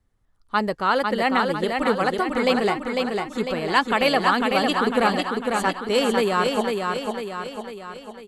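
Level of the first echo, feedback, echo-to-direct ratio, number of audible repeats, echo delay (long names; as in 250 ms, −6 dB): −4.0 dB, 53%, −2.5 dB, 6, 500 ms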